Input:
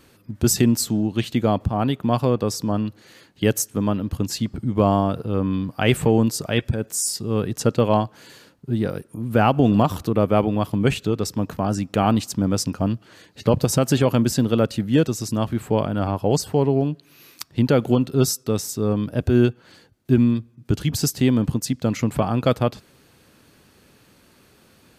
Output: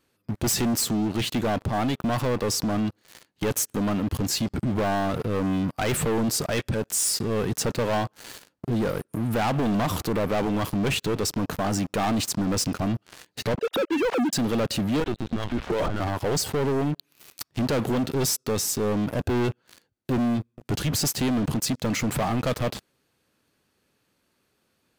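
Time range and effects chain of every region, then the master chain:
13.55–14.33 sine-wave speech + air absorption 69 m
15–16 HPF 56 Hz + LPC vocoder at 8 kHz pitch kept
whole clip: low shelf 240 Hz -5 dB; sample leveller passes 5; limiter -15 dBFS; gain -5.5 dB

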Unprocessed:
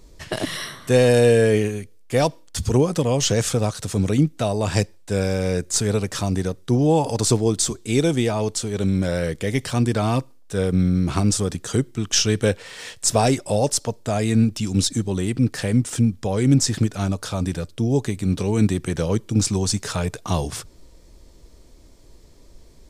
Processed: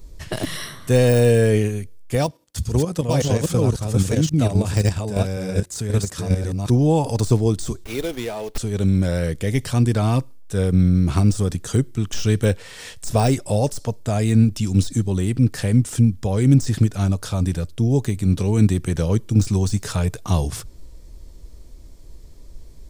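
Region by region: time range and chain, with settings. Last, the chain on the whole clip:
2.15–6.7 reverse delay 0.536 s, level -0.5 dB + HPF 50 Hz + level quantiser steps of 9 dB
7.84–8.58 HPF 470 Hz + bell 1100 Hz -5.5 dB 0.84 oct + running maximum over 5 samples
whole clip: low shelf 130 Hz +11.5 dB; de-esser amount 50%; high shelf 11000 Hz +9 dB; gain -2 dB

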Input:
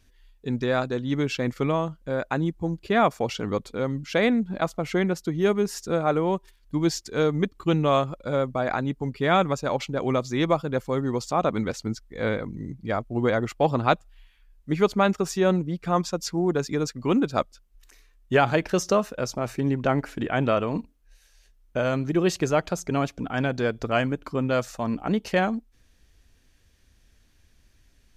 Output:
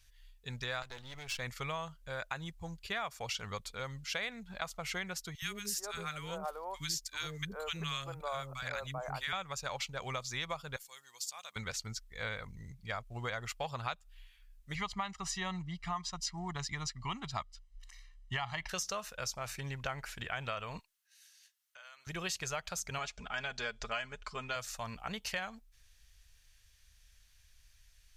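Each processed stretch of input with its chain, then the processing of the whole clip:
0.82–1.38 half-wave gain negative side -12 dB + compressor 3:1, threshold -28 dBFS
5.35–9.33 high shelf 9100 Hz +9 dB + three bands offset in time highs, lows, mids 70/390 ms, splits 380/1200 Hz
10.76–11.56 differentiator + notch 1300 Hz
14.75–18.69 air absorption 75 m + comb 1 ms, depth 89%
20.79–22.07 HPF 1100 Hz + compressor 3:1, threshold -50 dBFS + notch 2400 Hz, Q 19
22.98–24.56 LPF 8300 Hz 24 dB/oct + bell 140 Hz -5 dB 1 oct + comb 4.8 ms, depth 58%
whole clip: passive tone stack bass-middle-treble 10-0-10; compressor 6:1, threshold -36 dBFS; gain +2 dB

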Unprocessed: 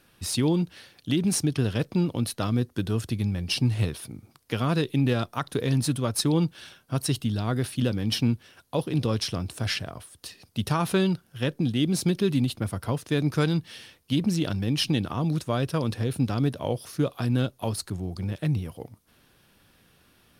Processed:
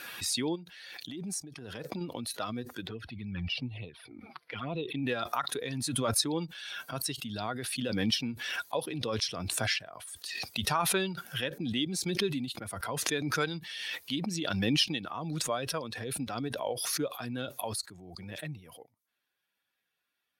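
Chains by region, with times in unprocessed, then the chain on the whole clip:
0.55–2.01 dynamic EQ 2800 Hz, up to -5 dB, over -44 dBFS, Q 0.96 + compressor 10:1, threshold -26 dBFS
2.87–5.03 running mean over 6 samples + envelope flanger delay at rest 6.9 ms, full sweep at -20.5 dBFS
whole clip: per-bin expansion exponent 1.5; weighting filter A; backwards sustainer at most 26 dB/s

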